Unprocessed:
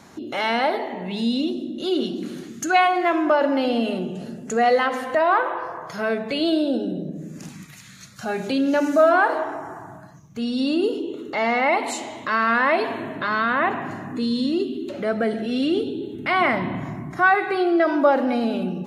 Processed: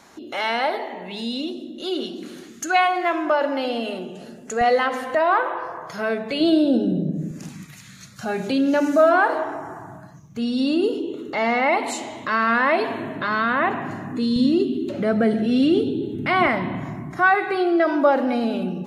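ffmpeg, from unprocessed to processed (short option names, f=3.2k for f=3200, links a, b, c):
-af "asetnsamples=n=441:p=0,asendcmd='4.61 equalizer g -1.5;6.4 equalizer g 9;7.31 equalizer g 2.5;14.36 equalizer g 9;16.47 equalizer g 0',equalizer=f=130:t=o:w=2.3:g=-10"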